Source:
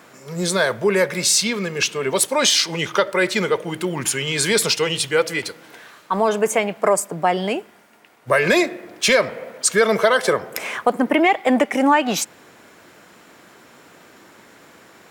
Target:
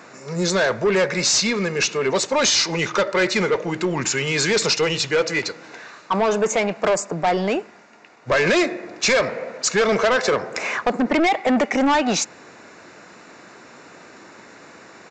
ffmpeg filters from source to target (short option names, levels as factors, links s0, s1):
-af "lowshelf=f=94:g=-6.5,bandreject=f=3200:w=5.1,aresample=16000,asoftclip=type=tanh:threshold=0.133,aresample=44100,volume=1.58"